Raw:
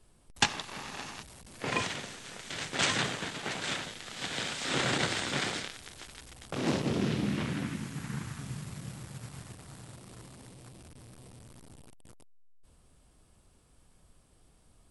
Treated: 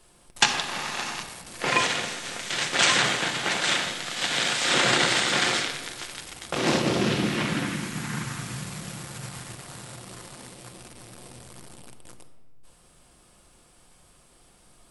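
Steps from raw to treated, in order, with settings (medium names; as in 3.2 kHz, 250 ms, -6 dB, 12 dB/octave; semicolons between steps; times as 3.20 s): bass shelf 300 Hz -11.5 dB; in parallel at +1.5 dB: peak limiter -22.5 dBFS, peak gain reduction 11 dB; on the sum: simulated room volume 1200 m³, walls mixed, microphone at 0.88 m; trim +3.5 dB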